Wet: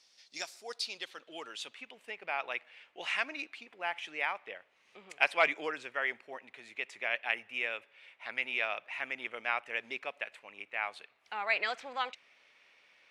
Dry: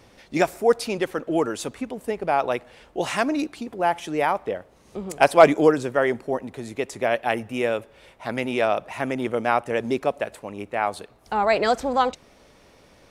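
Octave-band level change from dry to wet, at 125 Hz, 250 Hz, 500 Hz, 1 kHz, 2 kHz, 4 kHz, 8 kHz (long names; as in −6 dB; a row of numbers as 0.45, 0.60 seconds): below −30 dB, −26.5 dB, −20.0 dB, −15.0 dB, −4.0 dB, −4.5 dB, below −10 dB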